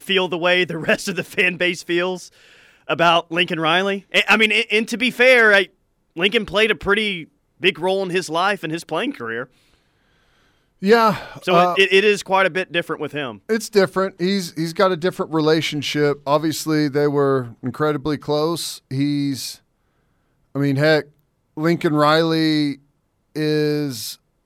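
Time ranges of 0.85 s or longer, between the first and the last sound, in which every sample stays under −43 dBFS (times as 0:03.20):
0:09.74–0:10.82
0:19.57–0:20.55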